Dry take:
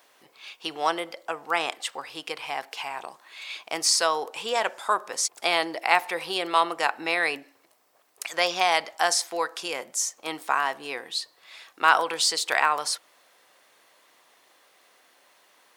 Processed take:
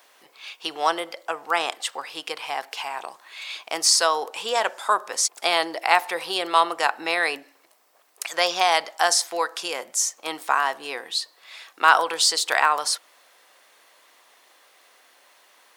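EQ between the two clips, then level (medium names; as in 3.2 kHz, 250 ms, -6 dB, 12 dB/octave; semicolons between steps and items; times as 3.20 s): high-pass 400 Hz 6 dB/octave; dynamic bell 2.3 kHz, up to -4 dB, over -40 dBFS, Q 2.5; +4.0 dB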